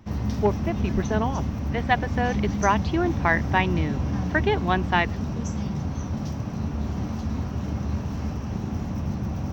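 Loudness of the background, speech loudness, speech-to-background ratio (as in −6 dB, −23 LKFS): −28.5 LKFS, −26.0 LKFS, 2.5 dB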